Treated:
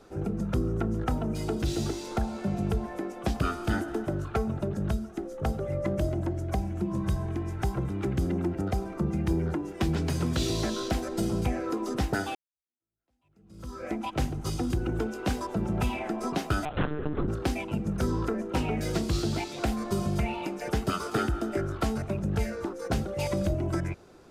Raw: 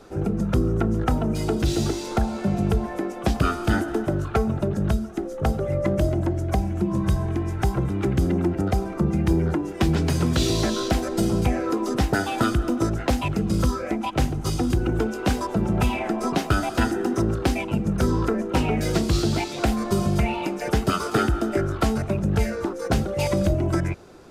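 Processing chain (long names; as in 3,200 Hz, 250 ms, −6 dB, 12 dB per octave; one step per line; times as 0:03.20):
0:12.35–0:13.85: fade in exponential
0:16.65–0:17.28: one-pitch LPC vocoder at 8 kHz 150 Hz
level −6.5 dB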